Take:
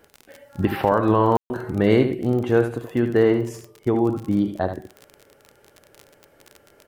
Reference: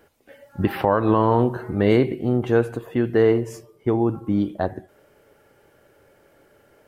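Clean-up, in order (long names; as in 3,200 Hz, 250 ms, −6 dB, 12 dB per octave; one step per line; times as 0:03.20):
click removal
ambience match 0:01.37–0:01.50
echo removal 75 ms −8.5 dB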